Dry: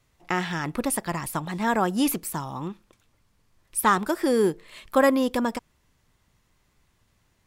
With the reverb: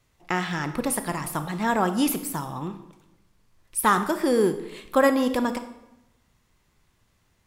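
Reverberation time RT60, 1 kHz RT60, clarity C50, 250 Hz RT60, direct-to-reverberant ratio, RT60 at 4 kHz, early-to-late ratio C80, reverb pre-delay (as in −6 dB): 0.90 s, 0.90 s, 11.0 dB, 1.1 s, 9.0 dB, 0.70 s, 13.5 dB, 24 ms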